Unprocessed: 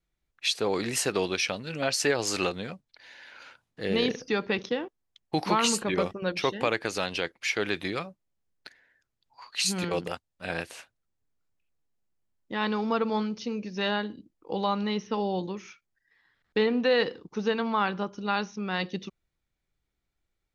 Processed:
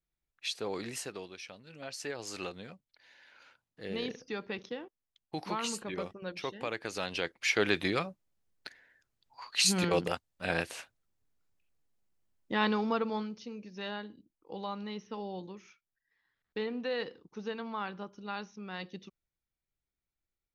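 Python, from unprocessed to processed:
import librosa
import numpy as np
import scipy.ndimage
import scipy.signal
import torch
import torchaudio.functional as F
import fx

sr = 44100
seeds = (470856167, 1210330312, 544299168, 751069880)

y = fx.gain(x, sr, db=fx.line((0.87, -9.0), (1.33, -19.0), (2.6, -10.5), (6.62, -10.5), (7.61, 1.0), (12.56, 1.0), (13.49, -11.0)))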